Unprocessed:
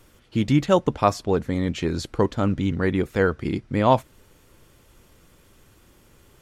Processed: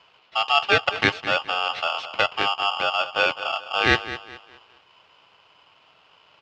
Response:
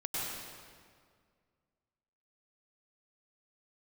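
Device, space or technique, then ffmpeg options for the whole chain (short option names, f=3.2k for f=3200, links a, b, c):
ring modulator pedal into a guitar cabinet: -filter_complex "[0:a]asettb=1/sr,asplit=3[a][b][c];[a]atrim=end=2.264[d];[b]atrim=start=2.26:end=3.55,asetpts=PTS-STARTPTS,afade=t=in:d=0.004:c=qsin,afade=t=out:st=1.286:d=0.004:c=qsin,lowpass=f=1.6k:w=0.5412,lowpass=f=1.6k:w=1.3066[e];[c]atrim=start=3.546[f];[d][e]acrossfade=d=0.004:c1=hsin:c2=qsin[g];[g][f]acrossfade=d=0.004:c1=qsin:c2=hsin,asplit=2[h][i];[i]adelay=208,lowpass=f=1.1k:p=1,volume=-12.5dB,asplit=2[j][k];[k]adelay=208,lowpass=f=1.1k:p=1,volume=0.38,asplit=2[l][m];[m]adelay=208,lowpass=f=1.1k:p=1,volume=0.38,asplit=2[n][o];[o]adelay=208,lowpass=f=1.1k:p=1,volume=0.38[p];[h][j][l][n][p]amix=inputs=5:normalize=0,aeval=exprs='val(0)*sgn(sin(2*PI*1000*n/s))':c=same,highpass=81,equalizer=f=230:t=q:w=4:g=-4,equalizer=f=990:t=q:w=4:g=-6,equalizer=f=2.7k:t=q:w=4:g=9,lowpass=f=4.4k:w=0.5412,lowpass=f=4.4k:w=1.3066,volume=-1.5dB"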